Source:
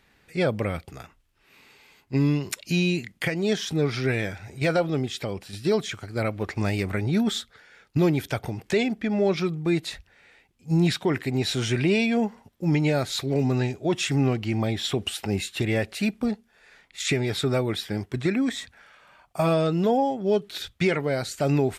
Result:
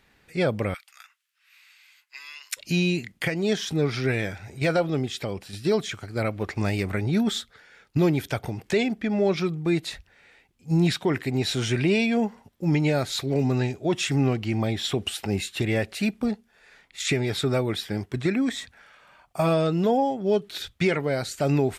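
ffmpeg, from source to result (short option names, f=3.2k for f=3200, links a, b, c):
-filter_complex "[0:a]asettb=1/sr,asplit=3[a][b][c];[a]atrim=end=0.744[d];[b]atrim=start=0.74:end=2.57,asetpts=PTS-STARTPTS,afade=t=in:d=0.004:c=qsin,afade=t=out:st=1.826:d=0.004:c=qsin,highpass=f=1.4k:w=0.5412,highpass=f=1.4k:w=1.3066[e];[c]atrim=start=2.566[f];[d][e]acrossfade=d=0.004:c1=hsin:c2=qsin[g];[g][f]acrossfade=d=0.004:c1=qsin:c2=hsin"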